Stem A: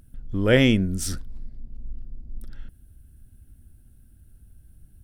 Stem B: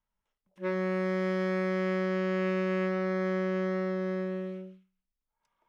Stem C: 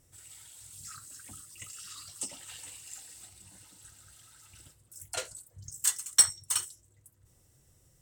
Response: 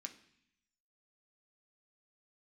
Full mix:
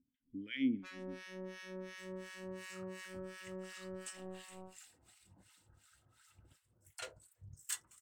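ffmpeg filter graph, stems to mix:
-filter_complex "[0:a]asplit=3[a][b][c];[a]bandpass=f=270:t=q:w=8,volume=0dB[d];[b]bandpass=f=2.29k:t=q:w=8,volume=-6dB[e];[c]bandpass=f=3.01k:t=q:w=8,volume=-9dB[f];[d][e][f]amix=inputs=3:normalize=0,volume=-8dB,asplit=2[g][h];[h]volume=-10dB[i];[1:a]acrusher=bits=4:mix=0:aa=0.5,adelay=200,volume=-13.5dB[j];[2:a]bass=f=250:g=0,treble=f=4k:g=-10,adelay=1850,volume=-3.5dB,asplit=2[k][l];[l]volume=-14.5dB[m];[3:a]atrim=start_sample=2205[n];[i][m]amix=inputs=2:normalize=0[o];[o][n]afir=irnorm=-1:irlink=0[p];[g][j][k][p]amix=inputs=4:normalize=0,acrossover=split=1100[q][r];[q]aeval=exprs='val(0)*(1-1/2+1/2*cos(2*PI*2.8*n/s))':c=same[s];[r]aeval=exprs='val(0)*(1-1/2-1/2*cos(2*PI*2.8*n/s))':c=same[t];[s][t]amix=inputs=2:normalize=0"

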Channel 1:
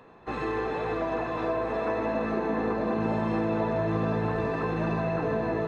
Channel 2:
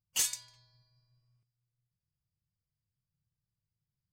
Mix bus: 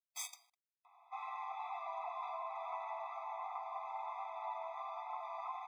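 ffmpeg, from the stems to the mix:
-filter_complex "[0:a]adelay=850,volume=-7dB[a];[1:a]acrusher=bits=6:dc=4:mix=0:aa=0.000001,volume=-5.5dB[b];[a][b]amix=inputs=2:normalize=0,highshelf=f=4.6k:g=-9,afftfilt=real='re*eq(mod(floor(b*sr/1024/650),2),1)':imag='im*eq(mod(floor(b*sr/1024/650),2),1)':win_size=1024:overlap=0.75"

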